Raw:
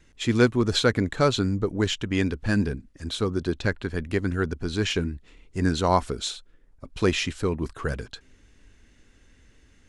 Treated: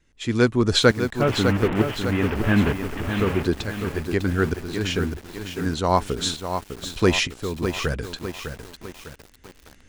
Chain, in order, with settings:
0:01.21–0:03.43: linear delta modulator 16 kbit/s, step −24 dBFS
shaped tremolo saw up 1.1 Hz, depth 80%
feedback echo at a low word length 603 ms, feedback 55%, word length 7 bits, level −7 dB
level +5.5 dB

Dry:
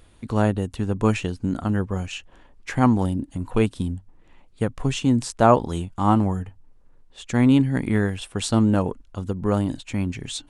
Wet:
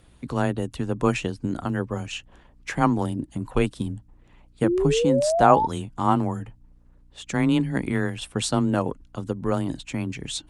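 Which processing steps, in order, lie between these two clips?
harmonic and percussive parts rebalanced percussive +6 dB
frequency shifter +16 Hz
sound drawn into the spectrogram rise, 0:04.63–0:05.67, 320–920 Hz −17 dBFS
mains hum 60 Hz, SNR 34 dB
level −5 dB

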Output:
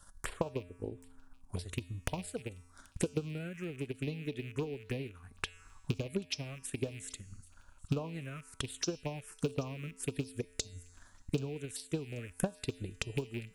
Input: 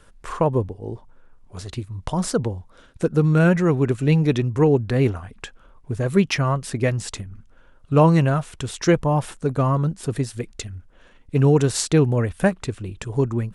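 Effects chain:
loose part that buzzes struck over −24 dBFS, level −20 dBFS
bass and treble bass −3 dB, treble +9 dB
downward compressor 4 to 1, threshold −35 dBFS, peak gain reduction 19.5 dB
transient designer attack +12 dB, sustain −3 dB
tuned comb filter 88 Hz, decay 1.6 s, harmonics odd, mix 60%
phaser swept by the level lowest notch 390 Hz, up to 2,000 Hz, full sweep at −31 dBFS
delay with a high-pass on its return 783 ms, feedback 34%, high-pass 3,900 Hz, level −19 dB
level +1 dB

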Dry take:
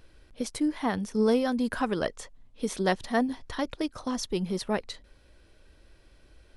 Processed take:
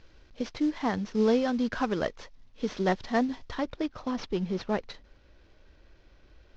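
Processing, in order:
variable-slope delta modulation 32 kbit/s
high-shelf EQ 4,200 Hz −3 dB, from 0:03.54 −10 dB

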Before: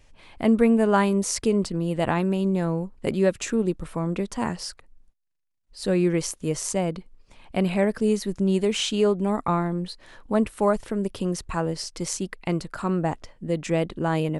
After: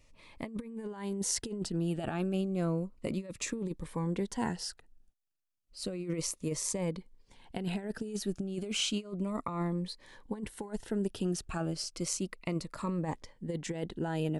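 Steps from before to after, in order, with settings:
low-shelf EQ 120 Hz −4 dB
compressor whose output falls as the input rises −25 dBFS, ratio −0.5
phaser whose notches keep moving one way falling 0.32 Hz
level −7 dB

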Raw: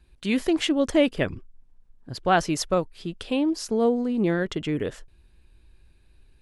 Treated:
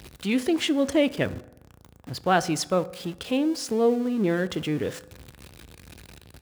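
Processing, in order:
converter with a step at zero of −35.5 dBFS
high-pass filter 63 Hz 24 dB per octave
on a send: convolution reverb RT60 0.90 s, pre-delay 3 ms, DRR 15 dB
on the sum: level −1.5 dB

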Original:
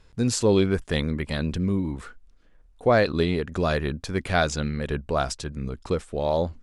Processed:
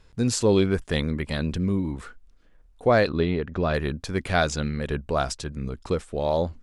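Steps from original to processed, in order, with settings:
0:03.09–0:03.74: high-frequency loss of the air 210 metres

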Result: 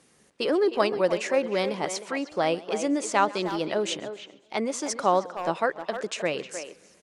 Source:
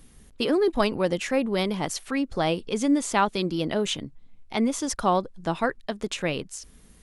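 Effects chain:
loudspeaker in its box 240–9,000 Hz, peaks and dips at 250 Hz −7 dB, 560 Hz +3 dB, 3,400 Hz −5 dB
far-end echo of a speakerphone 310 ms, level −9 dB
feedback echo with a swinging delay time 133 ms, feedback 53%, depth 174 cents, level −21 dB

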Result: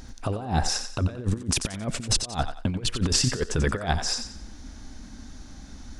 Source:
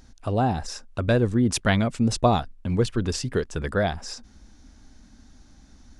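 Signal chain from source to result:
compressor whose output falls as the input rises −28 dBFS, ratio −0.5
on a send: feedback echo with a high-pass in the loop 90 ms, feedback 34%, high-pass 460 Hz, level −8.5 dB
on the sum: level +3 dB

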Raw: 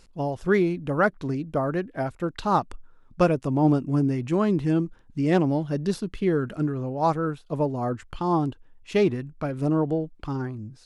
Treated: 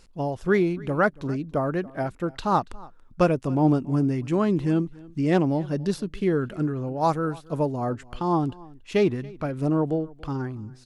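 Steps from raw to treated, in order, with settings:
0:07.01–0:07.76: high-shelf EQ 5,500 Hz +8 dB
on a send: single-tap delay 282 ms −22.5 dB

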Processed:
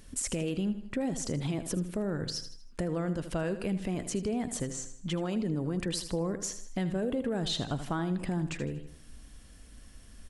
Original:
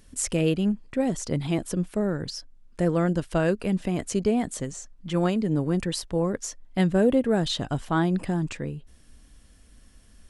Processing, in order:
brickwall limiter −19 dBFS, peak gain reduction 8 dB
on a send: repeating echo 79 ms, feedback 40%, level −12 dB
on the sum: downward compressor 2 to 1, threshold −35 dBFS, peak gain reduction 7.5 dB
level +2 dB

